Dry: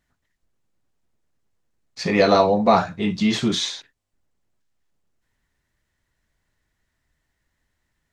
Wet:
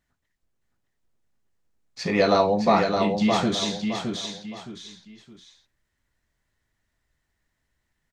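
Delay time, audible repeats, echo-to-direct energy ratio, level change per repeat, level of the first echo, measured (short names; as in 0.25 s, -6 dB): 0.616 s, 3, -4.5 dB, -9.5 dB, -5.0 dB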